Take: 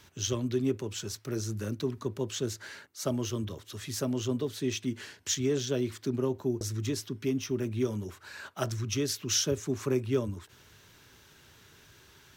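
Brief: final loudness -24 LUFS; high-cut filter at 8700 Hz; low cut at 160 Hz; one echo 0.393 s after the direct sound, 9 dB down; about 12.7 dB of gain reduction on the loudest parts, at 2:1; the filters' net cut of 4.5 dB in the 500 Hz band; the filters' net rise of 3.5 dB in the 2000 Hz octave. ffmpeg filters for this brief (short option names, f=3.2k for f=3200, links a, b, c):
-af "highpass=160,lowpass=8.7k,equalizer=f=500:t=o:g=-6.5,equalizer=f=2k:t=o:g=5,acompressor=threshold=-50dB:ratio=2,aecho=1:1:393:0.355,volume=21.5dB"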